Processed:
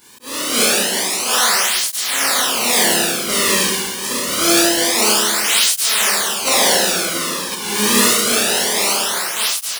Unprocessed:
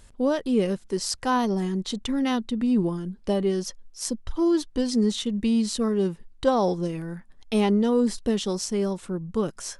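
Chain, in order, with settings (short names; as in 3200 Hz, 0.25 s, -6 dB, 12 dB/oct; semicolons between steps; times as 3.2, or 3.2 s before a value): spectral contrast lowered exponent 0.2; Schroeder reverb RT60 1.7 s, combs from 26 ms, DRR -8 dB; in parallel at -12 dB: soft clip -10 dBFS, distortion -16 dB; on the sum: auto swell 0.446 s; on a send: echo 0.692 s -10 dB; on the sum: tape flanging out of phase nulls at 0.26 Hz, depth 1.6 ms; gain +1.5 dB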